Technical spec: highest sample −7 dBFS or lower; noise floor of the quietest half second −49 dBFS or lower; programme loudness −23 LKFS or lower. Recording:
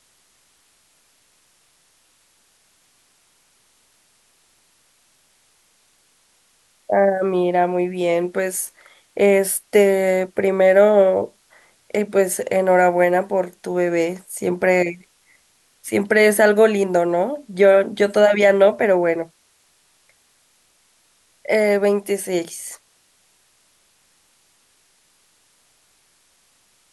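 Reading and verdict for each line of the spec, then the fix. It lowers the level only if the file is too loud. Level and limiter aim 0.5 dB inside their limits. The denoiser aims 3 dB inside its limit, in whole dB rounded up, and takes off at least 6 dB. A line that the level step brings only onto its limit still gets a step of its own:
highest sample −3.0 dBFS: out of spec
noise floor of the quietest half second −60 dBFS: in spec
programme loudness −18.0 LKFS: out of spec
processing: level −5.5 dB

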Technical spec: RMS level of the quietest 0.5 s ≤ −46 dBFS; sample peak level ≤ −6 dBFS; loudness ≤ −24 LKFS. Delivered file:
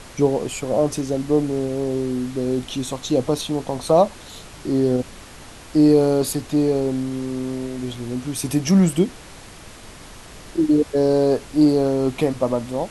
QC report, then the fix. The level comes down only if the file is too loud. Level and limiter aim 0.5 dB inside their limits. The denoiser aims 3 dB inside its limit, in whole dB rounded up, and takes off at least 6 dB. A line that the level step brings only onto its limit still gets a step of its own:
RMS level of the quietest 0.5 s −41 dBFS: out of spec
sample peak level −4.0 dBFS: out of spec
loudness −21.0 LKFS: out of spec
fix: broadband denoise 6 dB, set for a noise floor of −41 dBFS
level −3.5 dB

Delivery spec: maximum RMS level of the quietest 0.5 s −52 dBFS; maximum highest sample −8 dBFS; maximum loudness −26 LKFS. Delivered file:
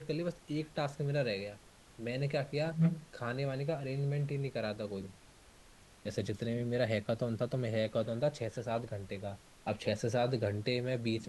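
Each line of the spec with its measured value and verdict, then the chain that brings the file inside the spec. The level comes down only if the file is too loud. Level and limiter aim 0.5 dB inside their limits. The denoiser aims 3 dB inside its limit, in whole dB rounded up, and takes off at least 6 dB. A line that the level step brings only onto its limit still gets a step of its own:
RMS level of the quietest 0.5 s −59 dBFS: in spec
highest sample −18.5 dBFS: in spec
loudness −36.0 LKFS: in spec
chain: no processing needed

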